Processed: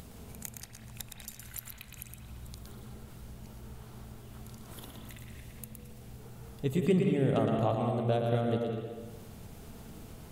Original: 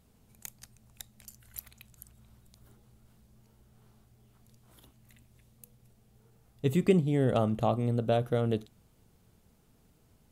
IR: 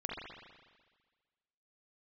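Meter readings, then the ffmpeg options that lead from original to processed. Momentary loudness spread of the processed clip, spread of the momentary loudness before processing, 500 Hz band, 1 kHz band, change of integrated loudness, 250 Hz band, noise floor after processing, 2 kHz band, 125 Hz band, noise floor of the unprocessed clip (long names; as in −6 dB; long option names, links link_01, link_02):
21 LU, 21 LU, −1.0 dB, −0.5 dB, −3.0 dB, −1.0 dB, −51 dBFS, 0.0 dB, −1.0 dB, −65 dBFS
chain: -filter_complex "[0:a]acompressor=mode=upward:threshold=-30dB:ratio=2.5,asplit=2[link_01][link_02];[1:a]atrim=start_sample=2205,adelay=115[link_03];[link_02][link_03]afir=irnorm=-1:irlink=0,volume=-3dB[link_04];[link_01][link_04]amix=inputs=2:normalize=0,volume=-3.5dB"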